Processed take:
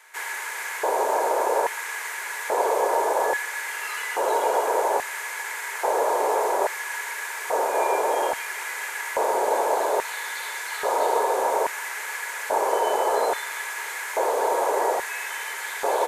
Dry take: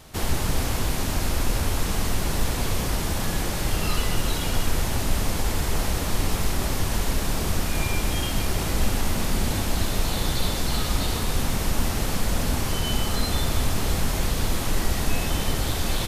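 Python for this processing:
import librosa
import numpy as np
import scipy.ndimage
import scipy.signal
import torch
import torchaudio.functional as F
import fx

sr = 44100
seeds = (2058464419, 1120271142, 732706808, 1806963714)

y = fx.highpass_res(x, sr, hz=420.0, q=4.9)
y = fx.band_shelf(y, sr, hz=3800.0, db=-9.5, octaves=1.3)
y = fx.notch(y, sr, hz=1800.0, q=6.6)
y = fx.small_body(y, sr, hz=(930.0, 1700.0), ring_ms=30, db=13)
y = fx.filter_lfo_highpass(y, sr, shape='square', hz=0.6, low_hz=600.0, high_hz=1900.0, q=2.4)
y = fx.high_shelf(y, sr, hz=11000.0, db=-8.5)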